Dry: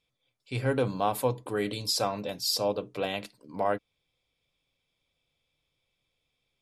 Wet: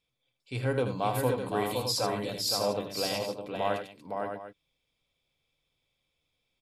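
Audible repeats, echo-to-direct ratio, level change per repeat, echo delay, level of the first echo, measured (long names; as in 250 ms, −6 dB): 4, −1.5 dB, repeats not evenly spaced, 80 ms, −8.0 dB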